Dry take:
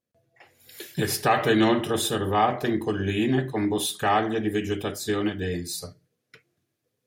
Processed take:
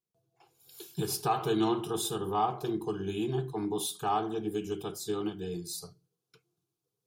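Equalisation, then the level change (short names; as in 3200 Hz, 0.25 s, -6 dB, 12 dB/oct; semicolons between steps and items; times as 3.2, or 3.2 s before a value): fixed phaser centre 380 Hz, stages 8; -5.0 dB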